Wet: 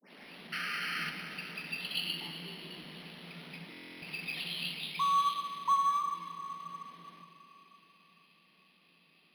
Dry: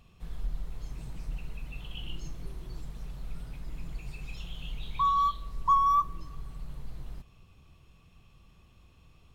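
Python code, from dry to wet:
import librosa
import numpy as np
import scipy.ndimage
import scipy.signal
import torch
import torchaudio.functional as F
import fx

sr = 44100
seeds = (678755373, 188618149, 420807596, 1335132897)

y = fx.tape_start_head(x, sr, length_s=0.42)
y = scipy.signal.sosfilt(scipy.signal.butter(16, 160.0, 'highpass', fs=sr, output='sos'), y)
y = fx.band_shelf(y, sr, hz=3000.0, db=12.5, octaves=1.7)
y = fx.rider(y, sr, range_db=4, speed_s=0.5)
y = fx.spec_paint(y, sr, seeds[0], shape='noise', start_s=0.52, length_s=0.58, low_hz=1200.0, high_hz=3200.0, level_db=-33.0)
y = fx.rev_plate(y, sr, seeds[1], rt60_s=3.8, hf_ratio=0.95, predelay_ms=0, drr_db=5.0)
y = fx.buffer_glitch(y, sr, at_s=(3.72,), block=1024, repeats=12)
y = np.interp(np.arange(len(y)), np.arange(len(y))[::6], y[::6])
y = y * librosa.db_to_amplitude(-2.0)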